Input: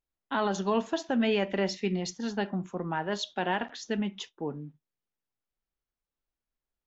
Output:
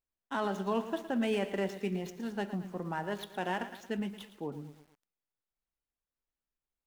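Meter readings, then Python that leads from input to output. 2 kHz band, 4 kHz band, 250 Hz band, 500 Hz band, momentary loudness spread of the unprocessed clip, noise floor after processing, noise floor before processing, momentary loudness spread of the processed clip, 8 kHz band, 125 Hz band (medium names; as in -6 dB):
-5.0 dB, -8.5 dB, -4.5 dB, -4.5 dB, 10 LU, under -85 dBFS, under -85 dBFS, 10 LU, no reading, -4.0 dB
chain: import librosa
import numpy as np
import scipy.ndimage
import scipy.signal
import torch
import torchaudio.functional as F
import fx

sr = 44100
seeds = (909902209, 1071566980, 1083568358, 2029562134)

y = scipy.signal.medfilt(x, 9)
y = fx.echo_crushed(y, sr, ms=113, feedback_pct=55, bits=8, wet_db=-12.5)
y = y * librosa.db_to_amplitude(-4.5)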